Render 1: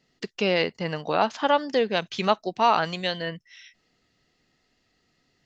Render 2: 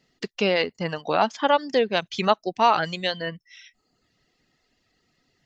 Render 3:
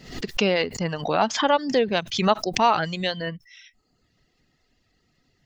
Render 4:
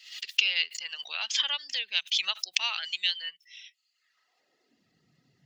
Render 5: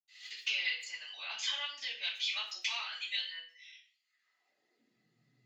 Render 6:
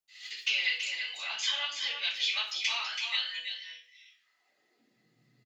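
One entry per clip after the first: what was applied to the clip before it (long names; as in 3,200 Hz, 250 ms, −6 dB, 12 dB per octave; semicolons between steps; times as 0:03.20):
reverb reduction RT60 0.68 s; level +2 dB
low-shelf EQ 150 Hz +9.5 dB; background raised ahead of every attack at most 100 dB per second; level −1 dB
high-pass filter sweep 2,900 Hz → 140 Hz, 0:03.89–0:04.94; level −3.5 dB
convolution reverb RT60 0.45 s, pre-delay 77 ms; level +6 dB
single-tap delay 330 ms −7 dB; level +4.5 dB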